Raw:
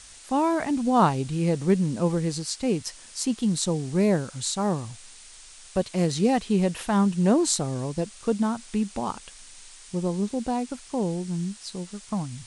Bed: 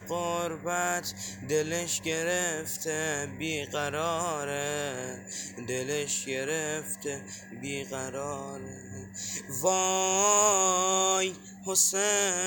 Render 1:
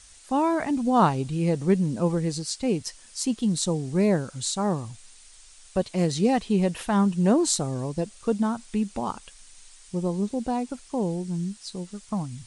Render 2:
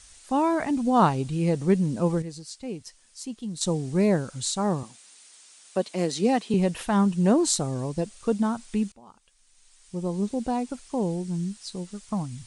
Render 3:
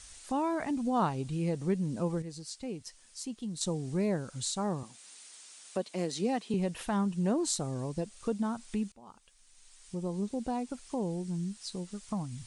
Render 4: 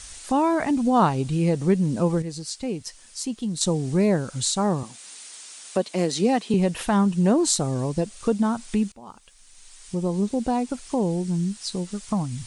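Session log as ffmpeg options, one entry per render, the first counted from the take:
-af "afftdn=nr=6:nf=-47"
-filter_complex "[0:a]asettb=1/sr,asplit=3[s0][s1][s2];[s0]atrim=end=4.834[s3];[s1]atrim=start=4.83:end=6.54,asetpts=PTS-STARTPTS,afade=t=in:d=0.004:c=qsin,afade=t=out:st=1.706:d=0.004:c=qsin,highpass=f=200:w=0.5412,highpass=f=200:w=1.3066[s4];[s2]atrim=start=6.536[s5];[s3][s4]acrossfade=d=0.004:c1=hsin:c2=qsin[s6];[s6][s5]acrossfade=d=0.004:c1=qsin:c2=hsin,asplit=4[s7][s8][s9][s10];[s7]atrim=end=2.222[s11];[s8]atrim=start=2.218:end=3.612,asetpts=PTS-STARTPTS,volume=0.335[s12];[s9]atrim=start=3.608:end=8.92,asetpts=PTS-STARTPTS,afade=t=out:st=5.308:d=0.004:c=hsin:silence=0.0794328[s13];[s10]atrim=start=8.92,asetpts=PTS-STARTPTS,afade=t=in:d=1.32:c=qua:silence=0.0794328[s14];[s11][s12]acrossfade=d=0.004:c1=hsin:c2=hsin[s15];[s13][s14]concat=n=2:v=0:a=1[s16];[s15][s16]acrossfade=d=0.004:c1=hsin:c2=hsin"
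-af "acompressor=threshold=0.00794:ratio=1.5"
-af "volume=3.16"

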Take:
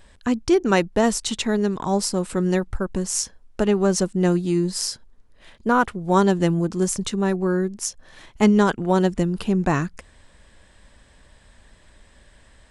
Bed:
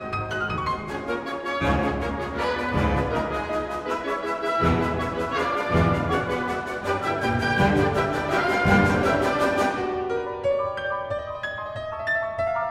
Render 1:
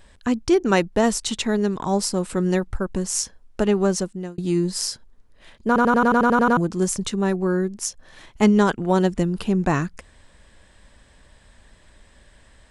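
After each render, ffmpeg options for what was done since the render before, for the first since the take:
-filter_complex "[0:a]asplit=12[s0][s1][s2][s3][s4][s5][s6][s7][s8][s9][s10][s11];[s0]atrim=end=4.38,asetpts=PTS-STARTPTS,afade=t=out:st=3.83:d=0.55[s12];[s1]atrim=start=4.38:end=5.762,asetpts=PTS-STARTPTS,afade=t=in:d=0.004:c=hsin[s13];[s2]atrim=start=5.668:end=5.762[s14];[s3]atrim=start=5.668:end=5.762[s15];[s4]atrim=start=5.668:end=5.762[s16];[s5]atrim=start=5.668:end=5.762[s17];[s6]atrim=start=5.668:end=5.762[s18];[s7]atrim=start=5.668:end=5.762[s19];[s8]atrim=start=5.668:end=5.762[s20];[s9]atrim=start=5.668:end=5.762[s21];[s10]atrim=start=5.668:end=5.762[s22];[s11]atrim=start=6.568[s23];[s12][s13]concat=n=2:v=0:a=1[s24];[s24][s14]acrossfade=d=0.004:c1=hsin:c2=hsin[s25];[s25][s15]acrossfade=d=0.004:c1=hsin:c2=hsin[s26];[s26][s16]acrossfade=d=0.004:c1=hsin:c2=hsin[s27];[s27][s17]acrossfade=d=0.004:c1=hsin:c2=hsin[s28];[s28][s18]acrossfade=d=0.004:c1=hsin:c2=hsin[s29];[s29][s19]acrossfade=d=0.004:c1=hsin:c2=hsin[s30];[s30][s20]acrossfade=d=0.004:c1=hsin:c2=hsin[s31];[s31][s21]acrossfade=d=0.004:c1=hsin:c2=hsin[s32];[s32][s22]acrossfade=d=0.004:c1=hsin:c2=hsin[s33];[s33][s23]acrossfade=d=0.004:c1=hsin:c2=hsin"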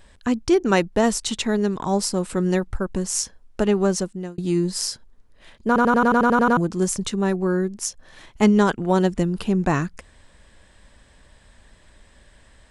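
-af anull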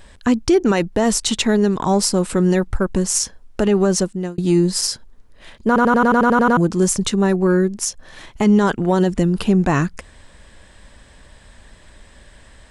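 -af "alimiter=limit=0.251:level=0:latency=1:release=37,acontrast=67"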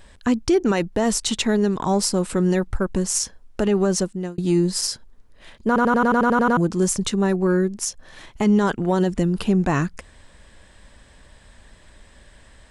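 -af "volume=0.668"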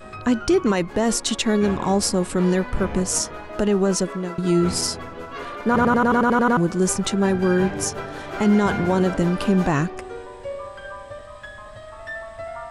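-filter_complex "[1:a]volume=0.376[s0];[0:a][s0]amix=inputs=2:normalize=0"

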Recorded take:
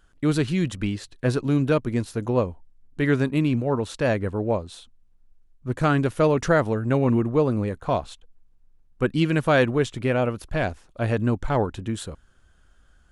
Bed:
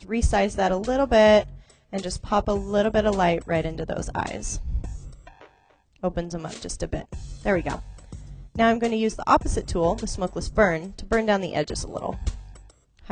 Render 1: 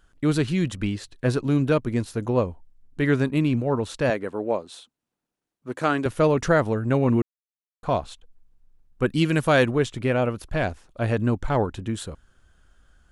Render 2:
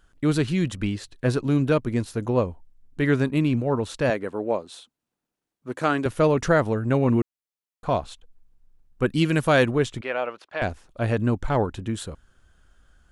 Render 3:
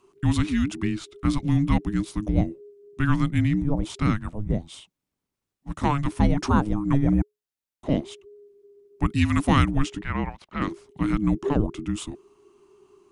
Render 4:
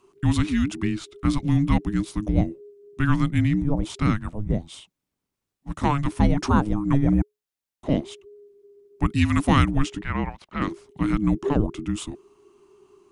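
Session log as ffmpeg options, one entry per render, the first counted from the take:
-filter_complex "[0:a]asettb=1/sr,asplit=3[s0][s1][s2];[s0]atrim=end=4.104[s3];[s1]atrim=start=4.1:end=6.06,asetpts=PTS-STARTPTS,afade=t=in:d=0.004:c=qsin,afade=t=out:st=1.956:d=0.004:c=qsin,highpass=270[s4];[s2]atrim=start=6.056[s5];[s3][s4]acrossfade=d=0.004:c1=hsin:c2=qsin[s6];[s6][s5]acrossfade=d=0.004:c1=qsin:c2=hsin,asettb=1/sr,asplit=3[s7][s8][s9];[s7]atrim=end=9.064[s10];[s8]atrim=start=9.06:end=9.71,asetpts=PTS-STARTPTS,afade=t=in:d=0.004:c=qsin,afade=t=out:st=0.646:d=0.004:c=qsin,highshelf=f=5500:g=8.5[s11];[s9]atrim=start=9.706[s12];[s10][s11]acrossfade=d=0.004:c1=hsin:c2=qsin[s13];[s13][s12]acrossfade=d=0.004:c1=qsin:c2=hsin,asplit=3[s14][s15][s16];[s14]atrim=end=7.22,asetpts=PTS-STARTPTS,afade=t=out:st=7.216:d=0.004:c=hsin[s17];[s15]atrim=start=7.22:end=7.83,asetpts=PTS-STARTPTS,volume=0[s18];[s16]atrim=start=7.83,asetpts=PTS-STARTPTS,afade=t=in:d=0.004:c=hsin[s19];[s17][s18][s19]concat=n=3:v=0:a=1"
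-filter_complex "[0:a]asettb=1/sr,asplit=3[s0][s1][s2];[s0]atrim=end=10.014[s3];[s1]atrim=start=10.01:end=10.62,asetpts=PTS-STARTPTS,afade=t=in:d=0.004:c=qsin,afade=t=out:st=0.606:d=0.004:c=qsin,highpass=610,lowpass=3900[s4];[s2]atrim=start=10.616[s5];[s3][s4]acrossfade=d=0.004:c1=hsin:c2=qsin[s6];[s6][s5]acrossfade=d=0.004:c1=qsin:c2=hsin"
-af "afreqshift=-420"
-af "volume=1.12"

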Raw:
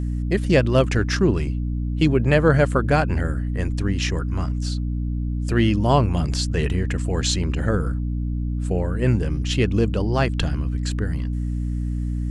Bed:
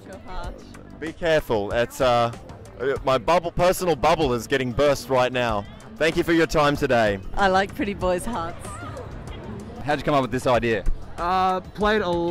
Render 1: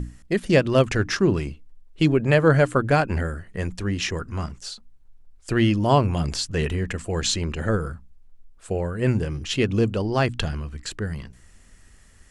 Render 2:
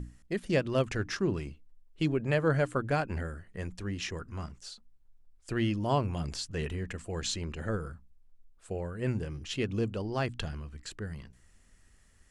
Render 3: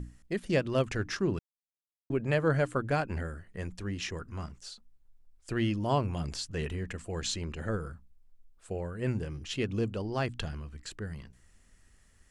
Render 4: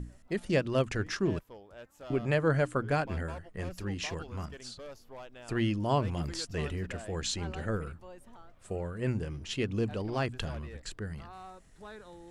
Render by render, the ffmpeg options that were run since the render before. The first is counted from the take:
-af "bandreject=f=60:t=h:w=6,bandreject=f=120:t=h:w=6,bandreject=f=180:t=h:w=6,bandreject=f=240:t=h:w=6,bandreject=f=300:t=h:w=6"
-af "volume=0.316"
-filter_complex "[0:a]asplit=3[s0][s1][s2];[s0]atrim=end=1.39,asetpts=PTS-STARTPTS,afade=t=out:st=1.386:d=0.004:c=hsin[s3];[s1]atrim=start=1.39:end=2.1,asetpts=PTS-STARTPTS,volume=0[s4];[s2]atrim=start=2.1,asetpts=PTS-STARTPTS,afade=t=in:d=0.004:c=hsin[s5];[s3][s4][s5]concat=n=3:v=0:a=1"
-filter_complex "[1:a]volume=0.0447[s0];[0:a][s0]amix=inputs=2:normalize=0"

